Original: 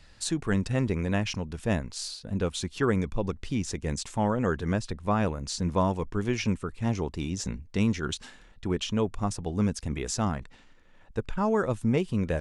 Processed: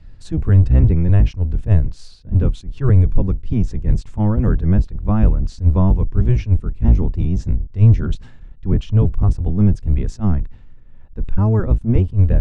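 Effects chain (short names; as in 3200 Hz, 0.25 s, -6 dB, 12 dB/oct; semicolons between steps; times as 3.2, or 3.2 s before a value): octaver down 1 oct, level +3 dB; RIAA curve playback; attack slew limiter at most 280 dB/s; gain -1.5 dB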